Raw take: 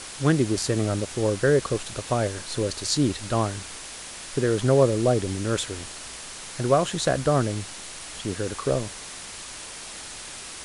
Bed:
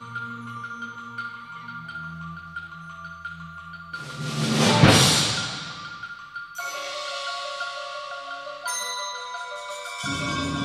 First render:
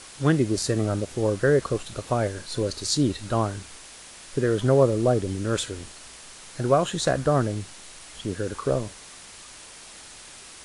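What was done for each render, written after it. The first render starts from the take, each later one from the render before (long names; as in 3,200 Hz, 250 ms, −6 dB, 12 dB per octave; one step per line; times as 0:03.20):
noise reduction from a noise print 6 dB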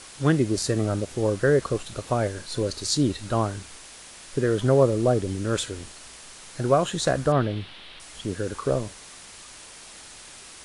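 0:07.32–0:08.00: high shelf with overshoot 4,900 Hz −13 dB, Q 3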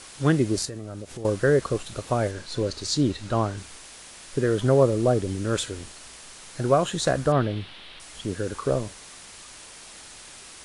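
0:00.65–0:01.25: downward compressor 4 to 1, threshold −34 dBFS
0:02.31–0:03.58: Bessel low-pass filter 6,900 Hz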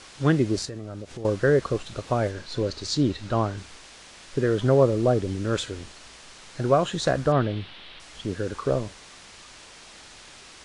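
low-pass filter 6,000 Hz 12 dB per octave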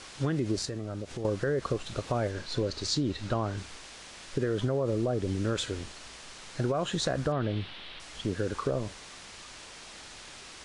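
brickwall limiter −16 dBFS, peak gain reduction 8.5 dB
downward compressor, threshold −25 dBFS, peak gain reduction 5.5 dB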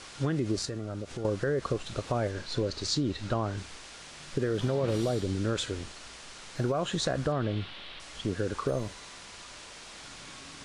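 mix in bed −25.5 dB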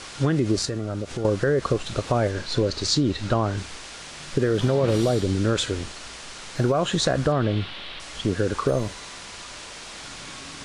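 level +7.5 dB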